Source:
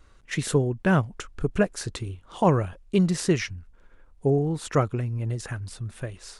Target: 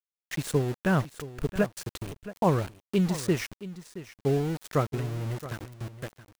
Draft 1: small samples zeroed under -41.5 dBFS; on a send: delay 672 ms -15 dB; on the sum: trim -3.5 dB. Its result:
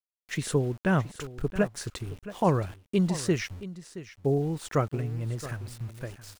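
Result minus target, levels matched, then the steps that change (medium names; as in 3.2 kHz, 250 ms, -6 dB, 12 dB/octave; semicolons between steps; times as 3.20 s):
small samples zeroed: distortion -11 dB
change: small samples zeroed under -30.5 dBFS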